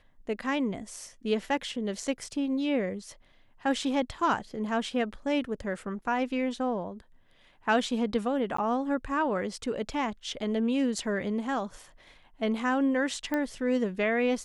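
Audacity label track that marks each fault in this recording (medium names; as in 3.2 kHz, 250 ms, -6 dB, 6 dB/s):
8.570000	8.580000	dropout 14 ms
13.340000	13.340000	pop -17 dBFS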